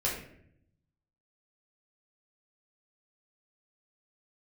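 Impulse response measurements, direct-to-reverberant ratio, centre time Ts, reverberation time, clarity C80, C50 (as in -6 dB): -6.0 dB, 39 ms, 0.65 s, 7.5 dB, 4.5 dB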